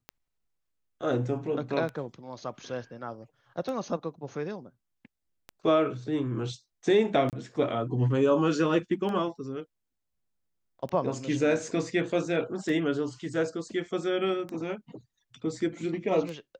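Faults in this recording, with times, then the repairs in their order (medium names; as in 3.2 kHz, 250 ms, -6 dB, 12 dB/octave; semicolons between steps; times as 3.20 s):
tick 33 1/3 rpm -23 dBFS
7.30–7.33 s: dropout 28 ms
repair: de-click; interpolate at 7.30 s, 28 ms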